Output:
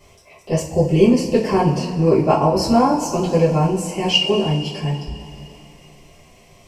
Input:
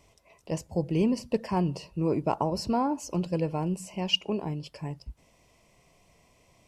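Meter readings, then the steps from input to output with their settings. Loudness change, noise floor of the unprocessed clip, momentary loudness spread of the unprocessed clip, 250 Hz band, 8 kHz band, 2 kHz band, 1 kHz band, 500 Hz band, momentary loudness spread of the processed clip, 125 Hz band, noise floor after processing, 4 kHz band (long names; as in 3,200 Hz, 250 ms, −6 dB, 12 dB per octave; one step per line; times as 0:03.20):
+12.0 dB, −64 dBFS, 10 LU, +10.5 dB, +12.5 dB, +13.0 dB, +12.0 dB, +14.0 dB, 10 LU, +12.0 dB, −49 dBFS, +11.0 dB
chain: coupled-rooms reverb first 0.32 s, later 3.2 s, from −18 dB, DRR −9.5 dB
level +3.5 dB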